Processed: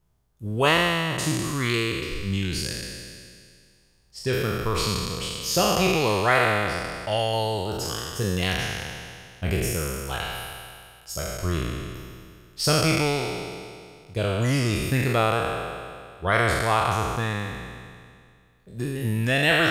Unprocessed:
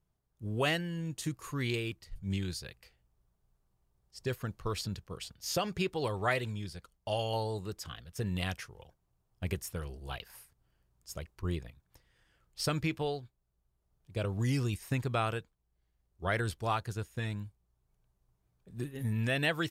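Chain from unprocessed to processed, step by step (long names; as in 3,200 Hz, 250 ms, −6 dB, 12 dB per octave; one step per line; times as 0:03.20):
peak hold with a decay on every bin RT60 2.14 s
level +6.5 dB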